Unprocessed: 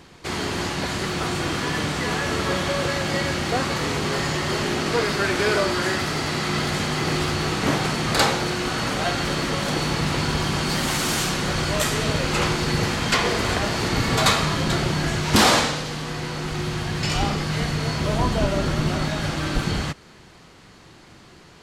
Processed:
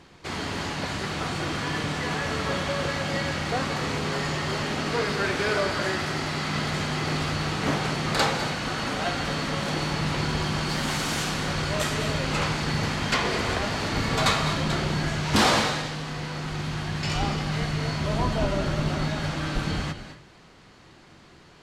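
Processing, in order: treble shelf 9.3 kHz -10 dB; hum notches 60/120/180/240/300/360/420/480 Hz; on a send: reverberation RT60 0.30 s, pre-delay 192 ms, DRR 10 dB; on the sum: trim -3.5 dB

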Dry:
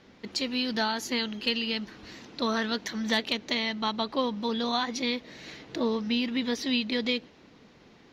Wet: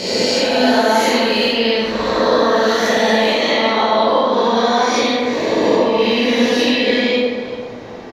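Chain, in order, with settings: reverse spectral sustain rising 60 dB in 1.66 s; peaking EQ 630 Hz +9 dB 1.3 oct; compression, threshold -27 dBFS, peak gain reduction 11.5 dB; on a send: delay 389 ms -17 dB; on the sum: plate-style reverb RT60 1.6 s, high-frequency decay 0.45×, DRR -7 dB; trim +7.5 dB

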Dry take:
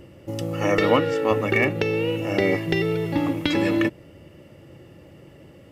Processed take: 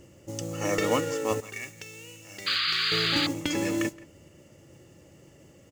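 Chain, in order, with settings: band-stop 3.9 kHz; modulation noise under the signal 22 dB; 1.40–2.92 s: amplifier tone stack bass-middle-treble 5-5-5; speakerphone echo 170 ms, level -20 dB; 2.46–3.27 s: painted sound noise 1.1–4.9 kHz -22 dBFS; peaking EQ 6.8 kHz +15 dB 0.69 oct; trim -7 dB

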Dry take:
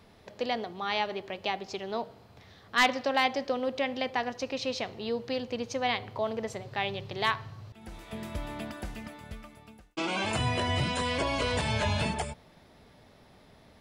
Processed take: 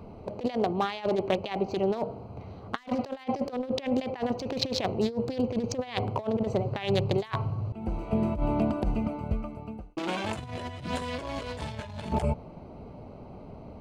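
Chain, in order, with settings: local Wiener filter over 25 samples; compressor with a negative ratio -37 dBFS, ratio -0.5; trim +8.5 dB

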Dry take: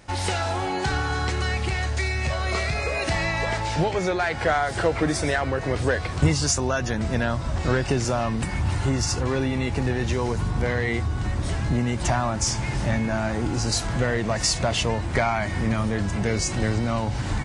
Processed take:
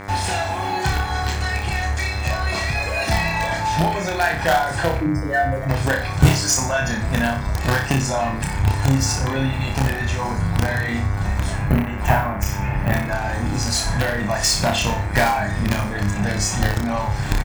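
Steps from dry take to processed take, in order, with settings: 4.97–5.69 s: spectral contrast enhancement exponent 3.5; comb 1.2 ms, depth 64%; in parallel at -11.5 dB: companded quantiser 2-bit; on the sum: reverb removal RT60 0.98 s; 11.52–12.94 s: high-order bell 5.8 kHz -13 dB; on a send: flutter echo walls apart 5.1 m, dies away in 0.46 s; on the sum: mains buzz 100 Hz, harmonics 23, -35 dBFS -2 dB/octave

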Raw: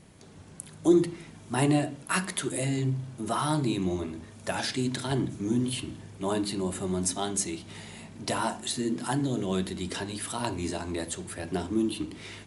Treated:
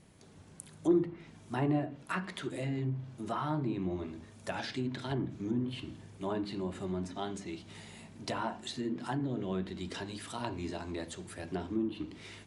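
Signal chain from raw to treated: hard clipper -12 dBFS, distortion -39 dB; low-pass that closes with the level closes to 1.7 kHz, closed at -23 dBFS; trim -6 dB

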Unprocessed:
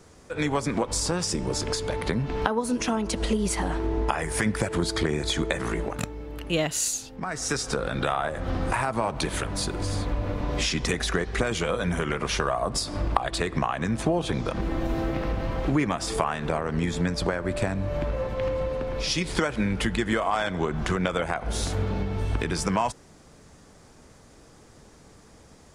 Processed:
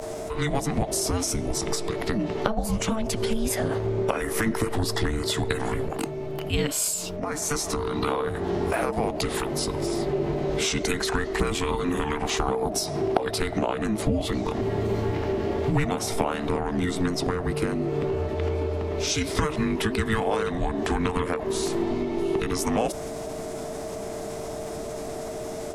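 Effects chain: whistle 890 Hz -30 dBFS; formant shift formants +3 st; frequency shift -440 Hz

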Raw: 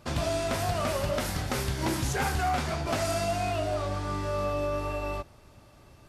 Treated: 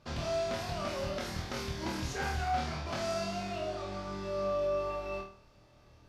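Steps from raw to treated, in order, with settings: resonant high shelf 7 kHz -8 dB, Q 1.5; on a send: flutter echo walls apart 4.4 m, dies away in 0.44 s; on the sum: trim -9 dB

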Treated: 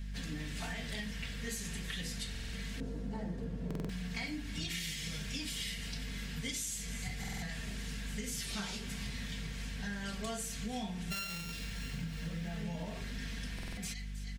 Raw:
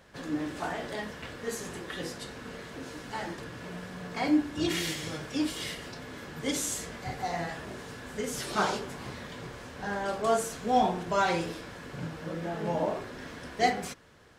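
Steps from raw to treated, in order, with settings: 11.10–11.52 s: sorted samples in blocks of 32 samples; hum 50 Hz, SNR 12 dB; high-order bell 620 Hz -15 dB 2.7 oct; comb 4.4 ms, depth 49%; feedback echo behind a high-pass 318 ms, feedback 54%, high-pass 1.9 kHz, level -18.5 dB; compression 10:1, threshold -39 dBFS, peak gain reduction 16 dB; 2.80–3.72 s: FFT filter 100 Hz 0 dB, 500 Hz +10 dB, 2.3 kHz -17 dB; buffer glitch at 2.30/3.66/7.19/13.54 s, samples 2048, times 4; trim +3.5 dB

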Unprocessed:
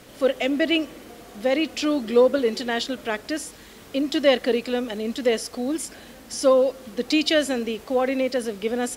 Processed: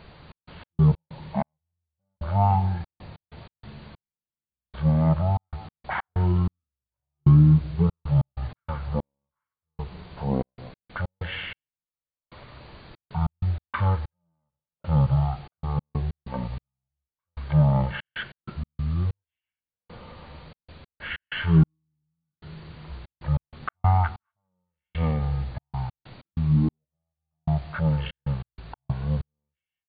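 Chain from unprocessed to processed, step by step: wide varispeed 0.3×; speakerphone echo 180 ms, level -18 dB; trance gate "xx.x.x.xx.....xx" 95 bpm -60 dB

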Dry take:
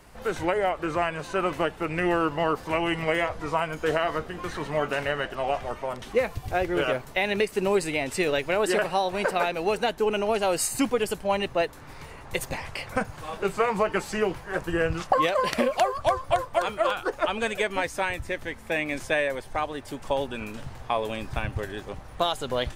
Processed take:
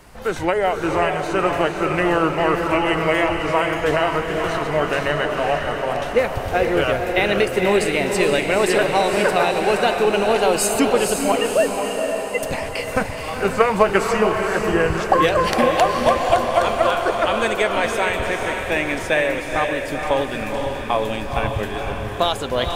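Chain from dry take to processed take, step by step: 11.32–12.43 s: formants replaced by sine waves; 13.57–14.06 s: transient shaper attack +7 dB, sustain +2 dB; echo that smears into a reverb 490 ms, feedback 56%, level -4 dB; trim +5.5 dB

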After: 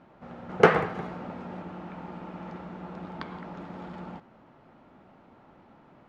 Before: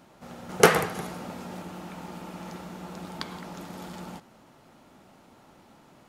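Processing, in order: low-pass 2.1 kHz 12 dB/octave

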